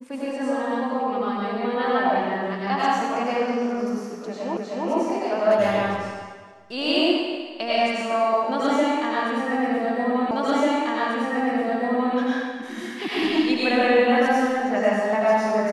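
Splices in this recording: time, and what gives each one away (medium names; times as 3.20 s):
4.57 s: repeat of the last 0.31 s
10.31 s: repeat of the last 1.84 s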